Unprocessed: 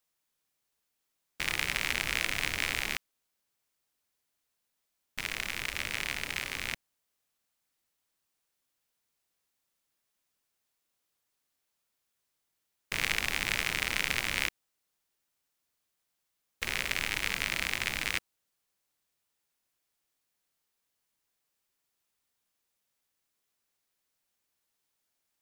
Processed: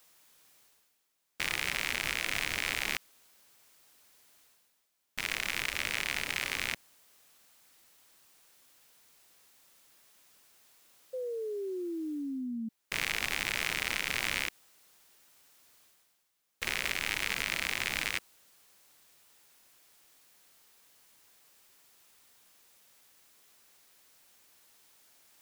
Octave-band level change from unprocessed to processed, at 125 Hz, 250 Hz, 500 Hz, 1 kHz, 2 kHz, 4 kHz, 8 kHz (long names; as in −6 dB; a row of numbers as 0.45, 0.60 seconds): −3.5, +7.5, +6.5, −0.5, −1.0, −0.5, −0.5 decibels